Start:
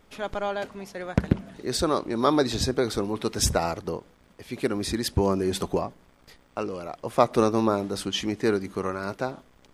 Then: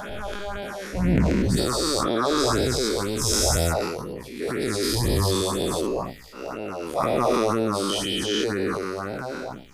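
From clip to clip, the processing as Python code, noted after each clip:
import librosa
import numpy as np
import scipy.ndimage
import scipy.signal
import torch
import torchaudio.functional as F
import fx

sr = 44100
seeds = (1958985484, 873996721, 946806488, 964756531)

y = fx.spec_dilate(x, sr, span_ms=480)
y = fx.phaser_stages(y, sr, stages=4, low_hz=110.0, high_hz=1200.0, hz=2.0, feedback_pct=0)
y = fx.transient(y, sr, attack_db=-4, sustain_db=6)
y = F.gain(torch.from_numpy(y), -4.5).numpy()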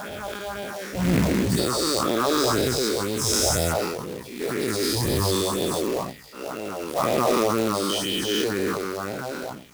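y = scipy.signal.sosfilt(scipy.signal.butter(2, 92.0, 'highpass', fs=sr, output='sos'), x)
y = fx.quant_companded(y, sr, bits=4)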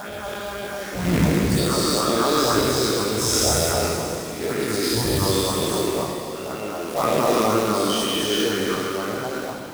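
y = fx.rev_plate(x, sr, seeds[0], rt60_s=2.7, hf_ratio=1.0, predelay_ms=0, drr_db=0.5)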